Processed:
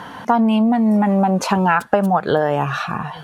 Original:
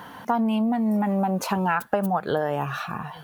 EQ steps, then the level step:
low-pass filter 8,600 Hz 12 dB per octave
+7.5 dB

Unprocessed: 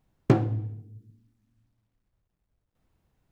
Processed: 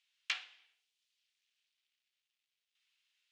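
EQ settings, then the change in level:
four-pole ladder high-pass 2,400 Hz, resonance 40%
high-frequency loss of the air 79 metres
+15.0 dB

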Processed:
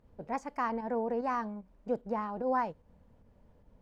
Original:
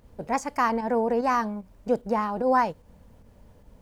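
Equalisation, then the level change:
low-pass filter 2,200 Hz 6 dB per octave
mains-hum notches 50/100 Hz
−8.0 dB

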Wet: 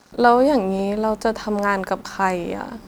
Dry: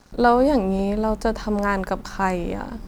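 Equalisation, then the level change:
high-pass filter 62 Hz 6 dB per octave
low-shelf EQ 140 Hz −11 dB
+3.0 dB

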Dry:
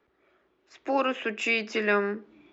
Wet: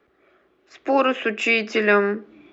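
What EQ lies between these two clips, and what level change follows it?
low-shelf EQ 140 Hz −3.5 dB
high-shelf EQ 3,800 Hz −5.5 dB
notch filter 930 Hz, Q 7.1
+8.0 dB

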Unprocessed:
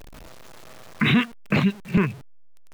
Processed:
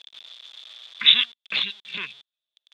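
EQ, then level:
low-pass with resonance 3,500 Hz, resonance Q 15
first difference
low-shelf EQ 150 Hz −5.5 dB
+4.0 dB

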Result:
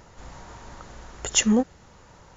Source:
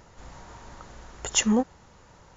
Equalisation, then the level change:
dynamic equaliser 960 Hz, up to −6 dB, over −48 dBFS, Q 2
+2.5 dB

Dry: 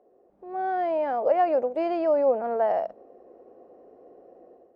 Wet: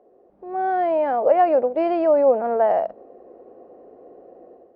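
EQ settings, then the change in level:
high-frequency loss of the air 180 metres
+6.0 dB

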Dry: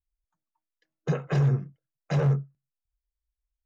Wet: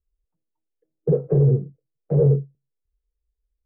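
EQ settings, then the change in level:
low-pass with resonance 450 Hz, resonance Q 4.9
low-shelf EQ 140 Hz +9 dB
0.0 dB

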